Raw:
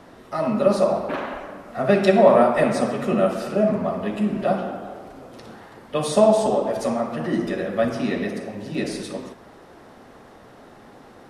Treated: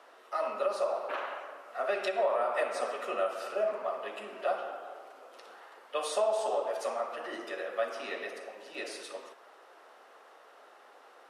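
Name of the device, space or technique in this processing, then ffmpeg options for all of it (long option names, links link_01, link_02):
laptop speaker: -af "highpass=frequency=450:width=0.5412,highpass=frequency=450:width=1.3066,equalizer=frequency=1300:width_type=o:width=0.55:gain=5,equalizer=frequency=2800:width_type=o:width=0.38:gain=4.5,alimiter=limit=-11dB:level=0:latency=1:release=230,volume=-8.5dB"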